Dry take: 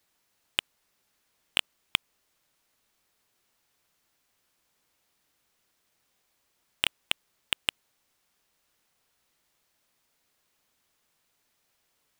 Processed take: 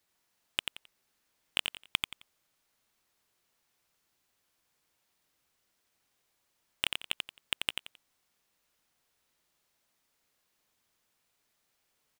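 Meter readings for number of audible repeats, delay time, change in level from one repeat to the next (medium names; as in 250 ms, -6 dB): 3, 88 ms, -12.0 dB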